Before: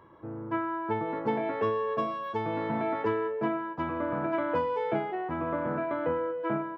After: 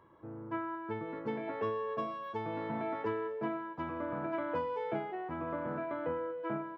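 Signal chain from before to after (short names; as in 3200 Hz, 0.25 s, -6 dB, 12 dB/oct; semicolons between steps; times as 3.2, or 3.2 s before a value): 0.75–1.48 bell 780 Hz -9.5 dB 0.49 oct; thin delay 0.943 s, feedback 66%, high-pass 3600 Hz, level -18 dB; gain -6.5 dB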